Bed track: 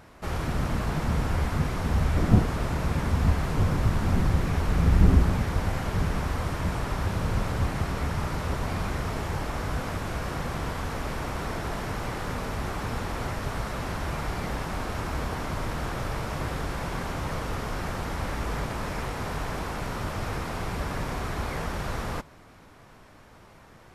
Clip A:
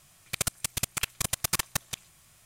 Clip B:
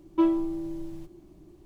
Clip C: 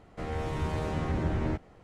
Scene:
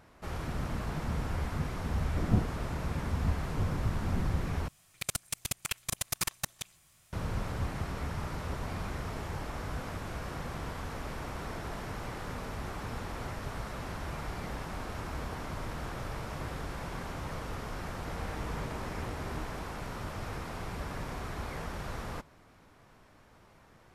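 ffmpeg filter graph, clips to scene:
-filter_complex "[0:a]volume=0.422[s0];[3:a]acompressor=threshold=0.0224:ratio=6:attack=3.2:release=140:knee=1:detection=peak[s1];[s0]asplit=2[s2][s3];[s2]atrim=end=4.684[s4];[1:a]atrim=end=2.45,asetpts=PTS-STARTPTS,volume=0.562[s5];[s3]atrim=start=7.126[s6];[s1]atrim=end=1.83,asetpts=PTS-STARTPTS,volume=0.531,afade=t=in:d=0.004:c=hsin,afade=t=out:st=1.826:d=0.004:c=hsin,adelay=17890[s7];[s4][s5]acrossfade=d=0.004:c1=hsin:c2=hsin[s8];[s8][s6]acrossfade=d=0.004:c1=hsin:c2=hsin[s9];[s9][s7]amix=inputs=2:normalize=0"

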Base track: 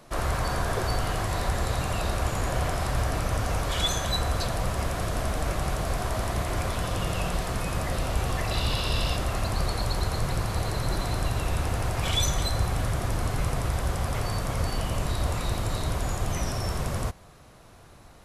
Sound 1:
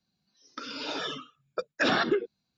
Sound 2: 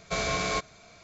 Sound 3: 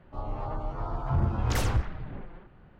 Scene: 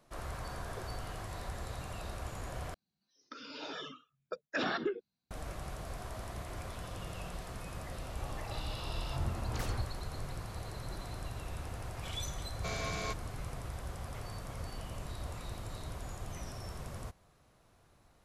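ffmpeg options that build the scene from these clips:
-filter_complex "[0:a]volume=0.188[s0];[1:a]equalizer=f=5400:t=o:w=1.6:g=-2.5[s1];[s0]asplit=2[s2][s3];[s2]atrim=end=2.744[s4];[s1]atrim=end=2.57,asetpts=PTS-STARTPTS,volume=0.376[s5];[s3]atrim=start=5.306[s6];[3:a]atrim=end=2.79,asetpts=PTS-STARTPTS,volume=0.299,afade=t=in:d=0.004:c=hsin,afade=t=out:st=2.786:d=0.004:c=hsin,adelay=8040[s7];[2:a]atrim=end=1.03,asetpts=PTS-STARTPTS,volume=0.316,afade=t=in:d=0.004:c=hsin,afade=t=out:st=1.026:d=0.004:c=hsin,adelay=12530[s8];[s4][s5]acrossfade=d=0.004:c1=hsin:c2=hsin[s9];[s9][s6]acrossfade=d=0.004:c1=hsin:c2=hsin[s10];[s10][s7][s8]amix=inputs=3:normalize=0"

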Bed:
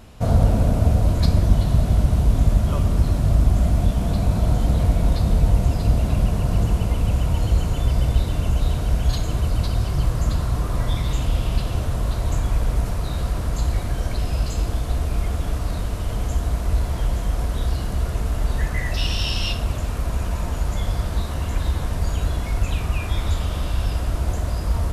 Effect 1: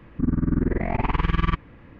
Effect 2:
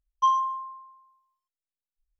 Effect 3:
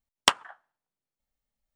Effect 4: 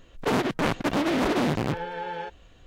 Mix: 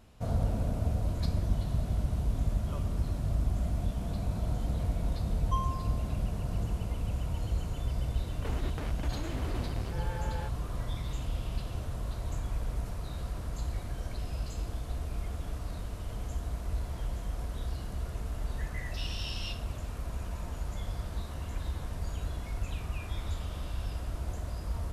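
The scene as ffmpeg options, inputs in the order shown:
-filter_complex "[0:a]volume=0.224[s0];[2:a]highpass=1100[s1];[4:a]acompressor=threshold=0.0141:ratio=6:attack=3.2:release=140:knee=1:detection=peak[s2];[s1]atrim=end=2.19,asetpts=PTS-STARTPTS,volume=0.316,afade=t=in:d=0.004:c=hsin,afade=t=out:st=2.186:d=0.004:c=hsin,adelay=233289S[s3];[s2]atrim=end=2.66,asetpts=PTS-STARTPTS,volume=0.891,afade=t=in:d=0.004:c=hsin,afade=t=out:st=2.656:d=0.004:c=hsin,adelay=8190[s4];[s0][s3][s4]amix=inputs=3:normalize=0"

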